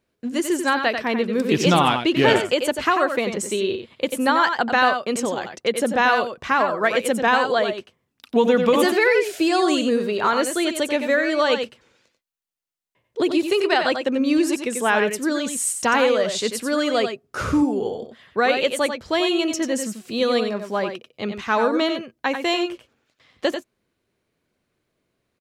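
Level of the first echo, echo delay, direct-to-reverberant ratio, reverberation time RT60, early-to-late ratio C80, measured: -7.5 dB, 91 ms, no reverb, no reverb, no reverb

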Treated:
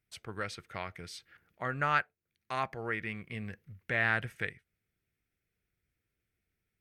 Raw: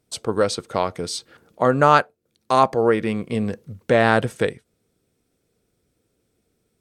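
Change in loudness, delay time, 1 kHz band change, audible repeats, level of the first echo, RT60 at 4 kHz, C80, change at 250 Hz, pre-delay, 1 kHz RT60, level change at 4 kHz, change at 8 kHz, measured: -14.0 dB, no echo, -16.0 dB, no echo, no echo, no reverb, no reverb, -19.5 dB, no reverb, no reverb, -14.5 dB, under -15 dB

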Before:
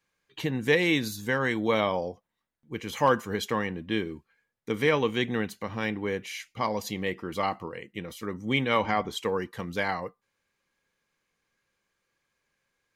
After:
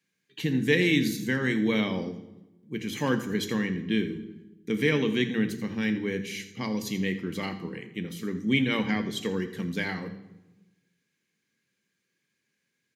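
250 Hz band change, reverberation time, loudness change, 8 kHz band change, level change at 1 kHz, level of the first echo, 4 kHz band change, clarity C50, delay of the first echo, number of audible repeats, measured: +5.0 dB, 1.1 s, +0.5 dB, +1.0 dB, -10.0 dB, -15.5 dB, +0.5 dB, 11.0 dB, 84 ms, 1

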